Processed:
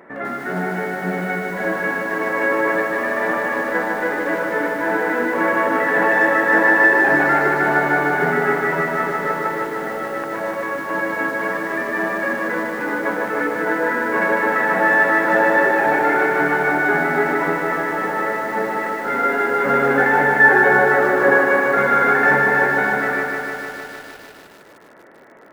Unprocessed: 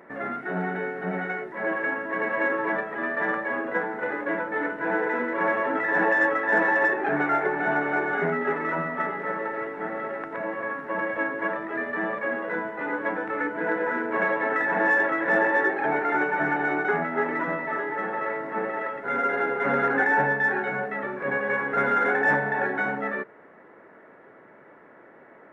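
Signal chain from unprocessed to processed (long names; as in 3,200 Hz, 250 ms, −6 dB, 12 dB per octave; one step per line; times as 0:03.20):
gain on a spectral selection 0:20.39–0:21.44, 260–1,800 Hz +7 dB
feedback echo at a low word length 152 ms, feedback 80%, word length 8 bits, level −4.5 dB
level +4.5 dB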